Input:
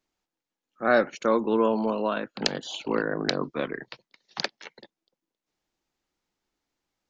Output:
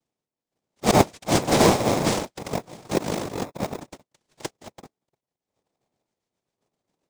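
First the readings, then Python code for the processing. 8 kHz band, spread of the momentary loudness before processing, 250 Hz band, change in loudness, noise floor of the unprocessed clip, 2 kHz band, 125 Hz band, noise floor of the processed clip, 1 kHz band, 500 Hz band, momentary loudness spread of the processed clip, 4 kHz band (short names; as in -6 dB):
n/a, 14 LU, +4.0 dB, +4.0 dB, under -85 dBFS, -1.0 dB, +13.5 dB, under -85 dBFS, +4.5 dB, +1.5 dB, 19 LU, +3.0 dB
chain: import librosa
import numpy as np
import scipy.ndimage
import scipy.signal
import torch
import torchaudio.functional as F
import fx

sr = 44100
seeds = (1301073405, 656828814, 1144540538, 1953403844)

p1 = fx.auto_swell(x, sr, attack_ms=105.0)
p2 = fx.rotary_switch(p1, sr, hz=1.2, then_hz=7.5, switch_at_s=3.79)
p3 = fx.filter_lfo_lowpass(p2, sr, shape='square', hz=0.99, low_hz=770.0, high_hz=2000.0, q=3.5)
p4 = fx.fixed_phaser(p3, sr, hz=740.0, stages=4)
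p5 = fx.noise_vocoder(p4, sr, seeds[0], bands=2)
p6 = fx.sample_hold(p5, sr, seeds[1], rate_hz=1500.0, jitter_pct=0)
p7 = p5 + (p6 * librosa.db_to_amplitude(-4.0))
y = p7 * librosa.db_to_amplitude(5.5)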